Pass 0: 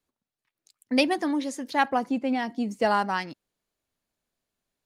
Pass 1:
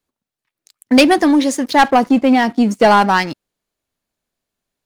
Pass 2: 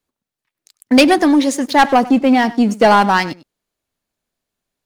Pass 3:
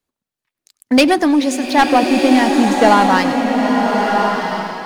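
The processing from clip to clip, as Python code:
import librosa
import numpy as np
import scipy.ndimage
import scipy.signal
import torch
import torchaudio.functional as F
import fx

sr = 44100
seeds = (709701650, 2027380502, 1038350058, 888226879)

y1 = fx.leveller(x, sr, passes=2)
y1 = y1 * librosa.db_to_amplitude(7.5)
y2 = y1 + 10.0 ** (-18.5 / 20.0) * np.pad(y1, (int(99 * sr / 1000.0), 0))[:len(y1)]
y3 = fx.rev_bloom(y2, sr, seeds[0], attack_ms=1330, drr_db=1.5)
y3 = y3 * librosa.db_to_amplitude(-1.5)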